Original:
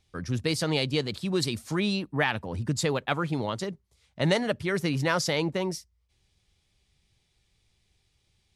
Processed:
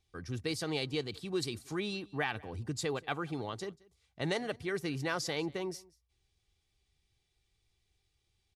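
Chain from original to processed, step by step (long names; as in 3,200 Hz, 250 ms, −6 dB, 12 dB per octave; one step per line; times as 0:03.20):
comb filter 2.6 ms, depth 38%
single-tap delay 184 ms −24 dB
level −8.5 dB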